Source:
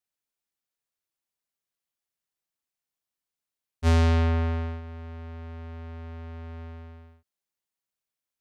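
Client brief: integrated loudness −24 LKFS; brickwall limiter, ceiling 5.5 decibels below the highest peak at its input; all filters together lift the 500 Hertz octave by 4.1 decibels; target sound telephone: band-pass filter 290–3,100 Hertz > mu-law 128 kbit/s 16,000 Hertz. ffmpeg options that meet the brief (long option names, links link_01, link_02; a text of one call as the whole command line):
ffmpeg -i in.wav -af "equalizer=frequency=500:width_type=o:gain=6,alimiter=limit=-18.5dB:level=0:latency=1,highpass=290,lowpass=3100,volume=12dB" -ar 16000 -c:a pcm_mulaw out.wav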